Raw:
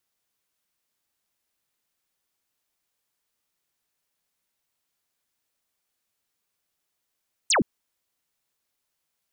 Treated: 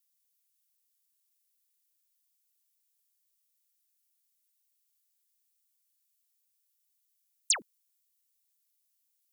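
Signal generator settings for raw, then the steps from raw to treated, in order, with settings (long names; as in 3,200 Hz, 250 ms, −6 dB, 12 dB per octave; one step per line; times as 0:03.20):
single falling chirp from 9,200 Hz, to 160 Hz, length 0.12 s sine, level −17.5 dB
first difference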